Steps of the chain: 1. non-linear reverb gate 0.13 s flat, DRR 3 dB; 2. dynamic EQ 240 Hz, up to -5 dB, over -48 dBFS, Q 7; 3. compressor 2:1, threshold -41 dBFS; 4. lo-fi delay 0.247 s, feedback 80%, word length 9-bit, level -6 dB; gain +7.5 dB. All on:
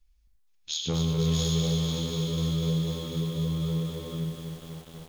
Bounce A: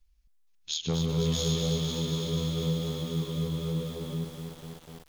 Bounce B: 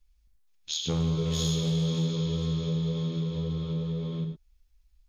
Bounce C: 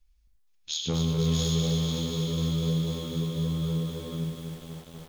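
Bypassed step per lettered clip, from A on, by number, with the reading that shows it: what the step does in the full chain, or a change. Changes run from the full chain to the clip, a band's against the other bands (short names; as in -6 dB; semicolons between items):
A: 1, momentary loudness spread change +1 LU; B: 4, momentary loudness spread change -5 LU; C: 2, momentary loudness spread change -3 LU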